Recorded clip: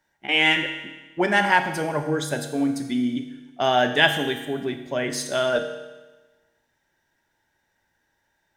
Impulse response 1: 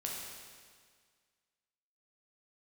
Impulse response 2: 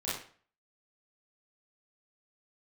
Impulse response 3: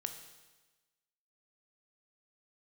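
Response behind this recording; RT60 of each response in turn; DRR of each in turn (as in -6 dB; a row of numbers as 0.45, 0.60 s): 3; 1.8, 0.45, 1.2 s; -3.0, -10.0, 6.5 dB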